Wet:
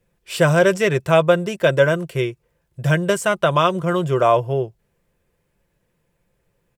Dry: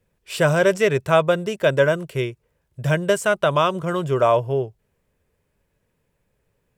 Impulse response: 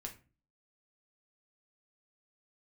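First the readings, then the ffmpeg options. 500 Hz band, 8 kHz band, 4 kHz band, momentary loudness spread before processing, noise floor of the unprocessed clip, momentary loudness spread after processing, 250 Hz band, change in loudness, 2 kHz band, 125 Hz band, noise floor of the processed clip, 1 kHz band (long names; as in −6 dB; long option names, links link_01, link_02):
+1.5 dB, +2.0 dB, +2.0 dB, 10 LU, −71 dBFS, 9 LU, +3.5 dB, +2.0 dB, +2.0 dB, +3.0 dB, −70 dBFS, +2.0 dB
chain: -af "aecho=1:1:5.8:0.36,volume=1.5dB"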